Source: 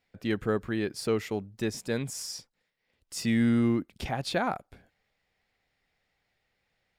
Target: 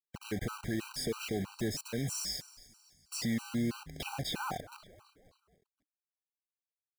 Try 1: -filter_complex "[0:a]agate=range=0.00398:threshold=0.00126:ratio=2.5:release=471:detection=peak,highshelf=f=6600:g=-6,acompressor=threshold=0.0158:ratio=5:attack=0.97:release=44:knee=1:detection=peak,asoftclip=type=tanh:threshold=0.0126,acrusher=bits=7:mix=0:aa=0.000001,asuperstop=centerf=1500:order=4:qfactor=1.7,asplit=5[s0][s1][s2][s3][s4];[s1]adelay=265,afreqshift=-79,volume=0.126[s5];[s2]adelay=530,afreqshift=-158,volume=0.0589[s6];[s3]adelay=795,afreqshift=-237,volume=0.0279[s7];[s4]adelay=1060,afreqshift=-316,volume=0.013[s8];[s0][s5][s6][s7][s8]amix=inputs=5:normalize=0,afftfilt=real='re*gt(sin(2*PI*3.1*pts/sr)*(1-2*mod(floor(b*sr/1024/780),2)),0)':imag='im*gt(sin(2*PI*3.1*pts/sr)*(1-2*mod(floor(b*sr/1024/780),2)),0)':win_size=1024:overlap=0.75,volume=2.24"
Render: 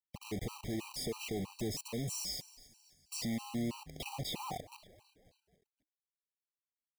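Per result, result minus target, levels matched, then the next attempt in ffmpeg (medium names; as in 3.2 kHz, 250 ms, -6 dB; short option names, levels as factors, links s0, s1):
saturation: distortion +13 dB; 2 kHz band -3.5 dB
-filter_complex "[0:a]agate=range=0.00398:threshold=0.00126:ratio=2.5:release=471:detection=peak,highshelf=f=6600:g=-6,acompressor=threshold=0.0158:ratio=5:attack=0.97:release=44:knee=1:detection=peak,asoftclip=type=tanh:threshold=0.0355,acrusher=bits=7:mix=0:aa=0.000001,asuperstop=centerf=1500:order=4:qfactor=1.7,asplit=5[s0][s1][s2][s3][s4];[s1]adelay=265,afreqshift=-79,volume=0.126[s5];[s2]adelay=530,afreqshift=-158,volume=0.0589[s6];[s3]adelay=795,afreqshift=-237,volume=0.0279[s7];[s4]adelay=1060,afreqshift=-316,volume=0.013[s8];[s0][s5][s6][s7][s8]amix=inputs=5:normalize=0,afftfilt=real='re*gt(sin(2*PI*3.1*pts/sr)*(1-2*mod(floor(b*sr/1024/780),2)),0)':imag='im*gt(sin(2*PI*3.1*pts/sr)*(1-2*mod(floor(b*sr/1024/780),2)),0)':win_size=1024:overlap=0.75,volume=2.24"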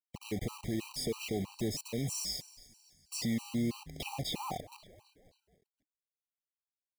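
2 kHz band -4.0 dB
-filter_complex "[0:a]agate=range=0.00398:threshold=0.00126:ratio=2.5:release=471:detection=peak,highshelf=f=6600:g=-6,acompressor=threshold=0.0158:ratio=5:attack=0.97:release=44:knee=1:detection=peak,asoftclip=type=tanh:threshold=0.0355,acrusher=bits=7:mix=0:aa=0.000001,asplit=5[s0][s1][s2][s3][s4];[s1]adelay=265,afreqshift=-79,volume=0.126[s5];[s2]adelay=530,afreqshift=-158,volume=0.0589[s6];[s3]adelay=795,afreqshift=-237,volume=0.0279[s7];[s4]adelay=1060,afreqshift=-316,volume=0.013[s8];[s0][s5][s6][s7][s8]amix=inputs=5:normalize=0,afftfilt=real='re*gt(sin(2*PI*3.1*pts/sr)*(1-2*mod(floor(b*sr/1024/780),2)),0)':imag='im*gt(sin(2*PI*3.1*pts/sr)*(1-2*mod(floor(b*sr/1024/780),2)),0)':win_size=1024:overlap=0.75,volume=2.24"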